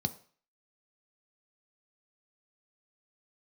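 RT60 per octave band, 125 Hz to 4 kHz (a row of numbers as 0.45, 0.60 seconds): 0.35, 0.40, 0.45, 0.45, 0.50, 0.45 seconds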